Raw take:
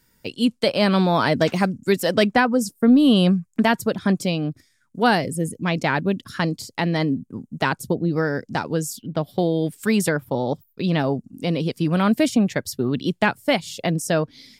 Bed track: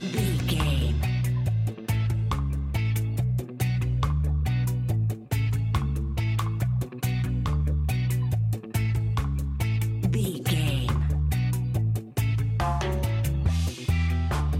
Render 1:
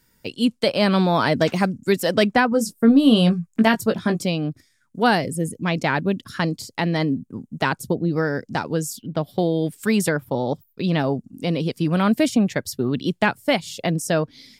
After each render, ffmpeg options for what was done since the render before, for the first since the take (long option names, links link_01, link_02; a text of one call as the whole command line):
ffmpeg -i in.wav -filter_complex "[0:a]asettb=1/sr,asplit=3[link_01][link_02][link_03];[link_01]atrim=end=2.504[link_04];[link_02]atrim=start=2.5:end=4.23,asetpts=PTS-STARTPTS,afade=type=in:duration=0.004:curve=qsin,afade=type=out:start_time=1.726:duration=0.004:curve=qsin,asplit=2[link_05][link_06];[link_06]adelay=18,volume=-6dB[link_07];[link_05][link_07]amix=inputs=2:normalize=0,atrim=end_sample=76293[link_08];[link_03]atrim=start=4.226[link_09];[link_04][link_08]acrossfade=duration=0.004:curve1=hsin:curve2=qsin[link_10];[link_10][link_09]acrossfade=duration=0.004:curve1=qsin:curve2=hsin" out.wav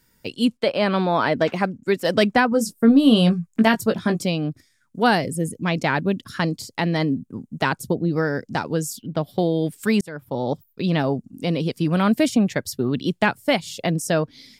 ffmpeg -i in.wav -filter_complex "[0:a]asettb=1/sr,asplit=3[link_01][link_02][link_03];[link_01]atrim=end=0.574[link_04];[link_02]atrim=start=0.57:end=2.05,asetpts=PTS-STARTPTS,afade=type=in:duration=0.004:curve=qsin,afade=type=out:start_time=1.476:duration=0.004:curve=qsin,bass=frequency=250:gain=-6,treble=frequency=4000:gain=-11[link_05];[link_03]atrim=start=2.046[link_06];[link_04][link_05]acrossfade=duration=0.004:curve1=hsin:curve2=qsin[link_07];[link_07][link_06]acrossfade=duration=0.004:curve1=qsin:curve2=hsin,asplit=2[link_08][link_09];[link_08]atrim=end=10.01,asetpts=PTS-STARTPTS,afade=type=out:start_time=10.006:duration=0.004:curve=hsin[link_10];[link_09]atrim=start=10.01,asetpts=PTS-STARTPTS,afade=type=in:duration=0.47[link_11];[link_10][link_11]concat=n=2:v=0:a=1" out.wav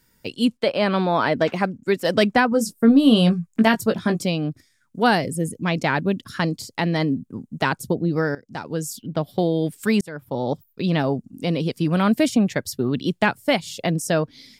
ffmpeg -i in.wav -filter_complex "[0:a]asplit=2[link_01][link_02];[link_01]atrim=end=8.35,asetpts=PTS-STARTPTS,afade=type=out:start_time=8.346:duration=0.004:curve=hsin:silence=0.11885[link_03];[link_02]atrim=start=8.35,asetpts=PTS-STARTPTS,afade=type=in:duration=0.63:silence=0.11885[link_04];[link_03][link_04]concat=n=2:v=0:a=1" out.wav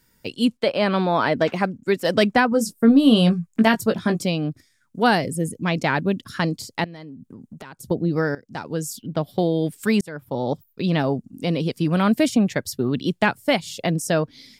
ffmpeg -i in.wav -filter_complex "[0:a]asettb=1/sr,asplit=3[link_01][link_02][link_03];[link_01]atrim=end=6.844[link_04];[link_02]atrim=start=6.84:end=7.91,asetpts=PTS-STARTPTS,afade=type=in:duration=0.004:curve=qsin,afade=type=out:start_time=1.066:duration=0.004:curve=qsin,acompressor=threshold=-35dB:ratio=16:attack=3.2:release=140:knee=1:detection=peak[link_05];[link_03]atrim=start=7.906[link_06];[link_04][link_05]acrossfade=duration=0.004:curve1=hsin:curve2=qsin[link_07];[link_07][link_06]acrossfade=duration=0.004:curve1=qsin:curve2=hsin" out.wav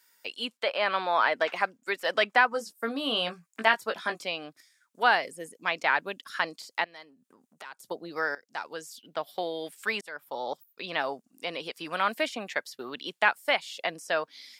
ffmpeg -i in.wav -filter_complex "[0:a]highpass=880,acrossover=split=3600[link_01][link_02];[link_02]acompressor=threshold=-47dB:ratio=4:attack=1:release=60[link_03];[link_01][link_03]amix=inputs=2:normalize=0" out.wav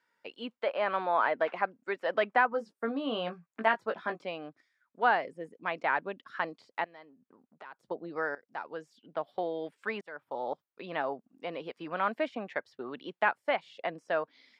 ffmpeg -i in.wav -af "lowpass=frequency=1500:poles=1,aemphasis=mode=reproduction:type=75kf" out.wav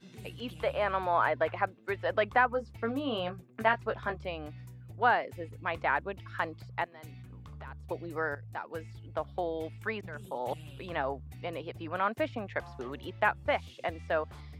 ffmpeg -i in.wav -i bed.wav -filter_complex "[1:a]volume=-22dB[link_01];[0:a][link_01]amix=inputs=2:normalize=0" out.wav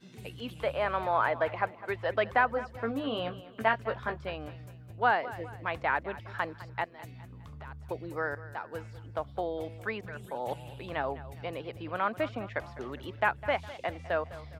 ffmpeg -i in.wav -af "aecho=1:1:205|410|615|820:0.15|0.0673|0.0303|0.0136" out.wav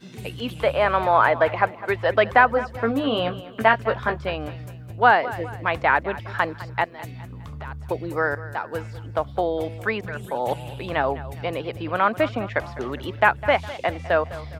ffmpeg -i in.wav -af "volume=10dB,alimiter=limit=-1dB:level=0:latency=1" out.wav